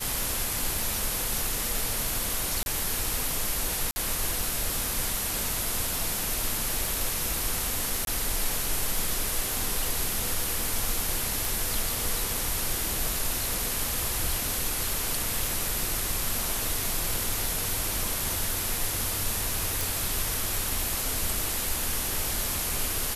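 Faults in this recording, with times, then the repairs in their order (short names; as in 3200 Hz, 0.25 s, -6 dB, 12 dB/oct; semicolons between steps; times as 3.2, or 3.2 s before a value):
2.63–2.66 gap 31 ms
3.91–3.96 gap 50 ms
8.05–8.07 gap 22 ms
11.45 pop
19.81 pop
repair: de-click; interpolate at 2.63, 31 ms; interpolate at 3.91, 50 ms; interpolate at 8.05, 22 ms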